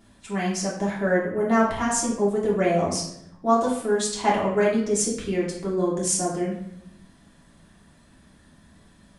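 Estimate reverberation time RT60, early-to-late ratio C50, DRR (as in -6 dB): 0.75 s, 4.5 dB, -6.0 dB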